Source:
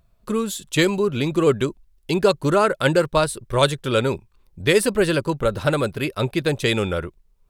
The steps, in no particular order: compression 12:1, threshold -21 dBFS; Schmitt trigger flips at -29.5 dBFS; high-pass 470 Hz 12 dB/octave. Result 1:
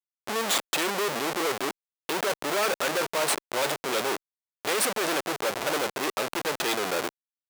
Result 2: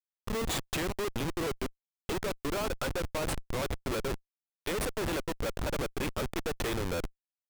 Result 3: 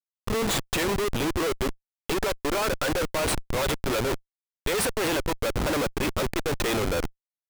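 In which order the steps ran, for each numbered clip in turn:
Schmitt trigger > compression > high-pass; compression > high-pass > Schmitt trigger; high-pass > Schmitt trigger > compression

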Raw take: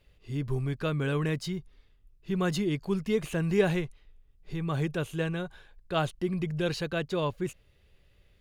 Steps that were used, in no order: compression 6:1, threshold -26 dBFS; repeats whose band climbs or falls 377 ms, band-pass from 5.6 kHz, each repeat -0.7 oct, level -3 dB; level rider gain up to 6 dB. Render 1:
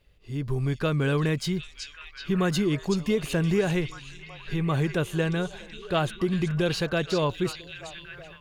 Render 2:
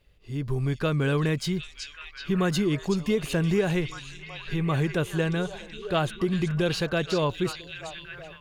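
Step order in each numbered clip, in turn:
compression > repeats whose band climbs or falls > level rider; repeats whose band climbs or falls > compression > level rider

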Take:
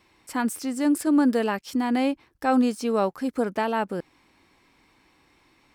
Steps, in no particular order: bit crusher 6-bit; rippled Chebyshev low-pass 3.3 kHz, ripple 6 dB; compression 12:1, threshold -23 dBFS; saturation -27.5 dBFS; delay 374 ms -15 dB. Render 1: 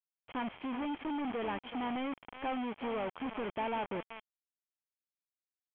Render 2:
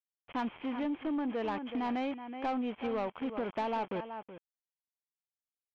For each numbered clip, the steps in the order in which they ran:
compression > delay > saturation > bit crusher > rippled Chebyshev low-pass; bit crusher > delay > compression > rippled Chebyshev low-pass > saturation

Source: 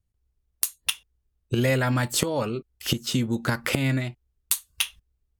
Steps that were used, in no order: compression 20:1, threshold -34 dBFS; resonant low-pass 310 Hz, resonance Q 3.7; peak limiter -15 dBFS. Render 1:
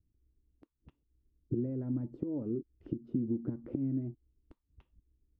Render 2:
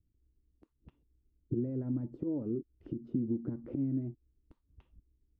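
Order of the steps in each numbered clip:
compression > resonant low-pass > peak limiter; peak limiter > compression > resonant low-pass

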